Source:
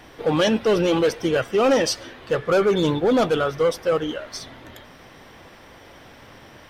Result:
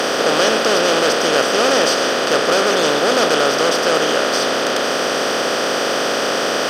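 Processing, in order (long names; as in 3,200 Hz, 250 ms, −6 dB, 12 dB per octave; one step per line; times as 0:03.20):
compressor on every frequency bin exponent 0.2
high-pass filter 780 Hz 6 dB per octave
level +1 dB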